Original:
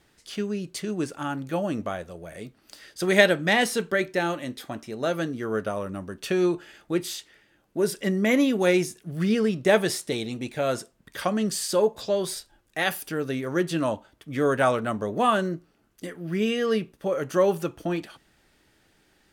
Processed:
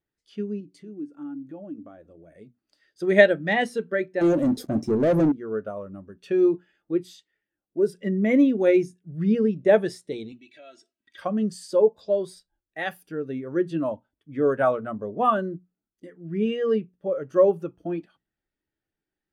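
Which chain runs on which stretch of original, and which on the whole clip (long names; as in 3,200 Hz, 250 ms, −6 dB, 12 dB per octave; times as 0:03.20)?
0:00.60–0:02.33: parametric band 290 Hz +13 dB 0.36 octaves + downward compressor 2.5 to 1, threshold −35 dBFS
0:04.21–0:05.32: flat-topped bell 1,700 Hz −12.5 dB 2.5 octaves + leveller curve on the samples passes 5
0:10.32–0:11.18: comb filter 3.1 ms, depth 72% + downward compressor 2.5 to 1, threshold −45 dBFS + meter weighting curve D
whole clip: high-shelf EQ 5,300 Hz −3.5 dB; mains-hum notches 60/120/180/240 Hz; every bin expanded away from the loudest bin 1.5 to 1; level +1.5 dB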